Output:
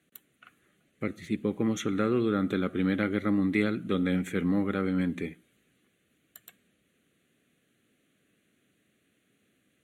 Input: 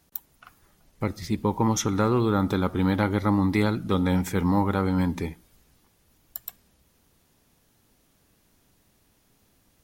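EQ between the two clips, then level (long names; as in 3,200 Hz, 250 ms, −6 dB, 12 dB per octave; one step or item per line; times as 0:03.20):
band-pass filter 200–7,800 Hz
phaser with its sweep stopped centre 2,200 Hz, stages 4
0.0 dB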